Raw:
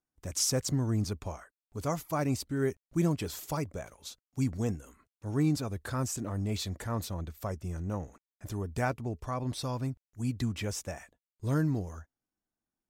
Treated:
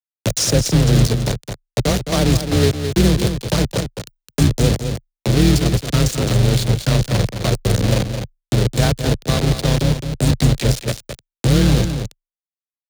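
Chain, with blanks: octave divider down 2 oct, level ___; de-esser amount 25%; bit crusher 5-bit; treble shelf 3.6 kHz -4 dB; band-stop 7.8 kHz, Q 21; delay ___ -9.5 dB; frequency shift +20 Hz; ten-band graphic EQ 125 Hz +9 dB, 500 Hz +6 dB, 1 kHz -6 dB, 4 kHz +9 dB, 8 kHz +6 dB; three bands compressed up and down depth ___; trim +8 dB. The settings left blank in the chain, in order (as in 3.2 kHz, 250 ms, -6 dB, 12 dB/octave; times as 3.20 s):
+1 dB, 213 ms, 40%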